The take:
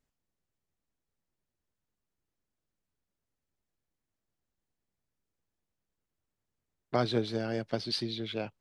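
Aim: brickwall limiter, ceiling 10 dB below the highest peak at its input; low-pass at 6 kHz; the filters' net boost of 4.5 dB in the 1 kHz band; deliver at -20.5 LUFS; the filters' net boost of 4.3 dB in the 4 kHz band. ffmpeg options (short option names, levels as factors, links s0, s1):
-af "lowpass=6000,equalizer=f=1000:t=o:g=6.5,equalizer=f=4000:t=o:g=5.5,volume=4.22,alimiter=limit=0.398:level=0:latency=1"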